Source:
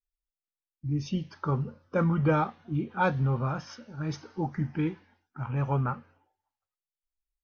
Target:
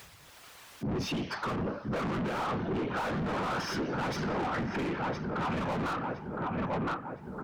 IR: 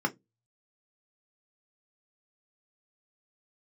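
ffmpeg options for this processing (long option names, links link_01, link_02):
-filter_complex "[0:a]afftfilt=real='hypot(re,im)*cos(2*PI*random(0))':imag='hypot(re,im)*sin(2*PI*random(1))':win_size=512:overlap=0.75,asplit=2[link_01][link_02];[link_02]adelay=1013,lowpass=frequency=2000:poles=1,volume=-11dB,asplit=2[link_03][link_04];[link_04]adelay=1013,lowpass=frequency=2000:poles=1,volume=0.38,asplit=2[link_05][link_06];[link_06]adelay=1013,lowpass=frequency=2000:poles=1,volume=0.38,asplit=2[link_07][link_08];[link_08]adelay=1013,lowpass=frequency=2000:poles=1,volume=0.38[link_09];[link_01][link_03][link_05][link_07][link_09]amix=inputs=5:normalize=0,acompressor=mode=upward:threshold=-54dB:ratio=2.5,asplit=2[link_10][link_11];[link_11]highpass=frequency=720:poles=1,volume=40dB,asoftclip=type=tanh:threshold=-17.5dB[link_12];[link_10][link_12]amix=inputs=2:normalize=0,lowpass=frequency=1900:poles=1,volume=-6dB,alimiter=level_in=4dB:limit=-24dB:level=0:latency=1:release=349,volume=-4dB"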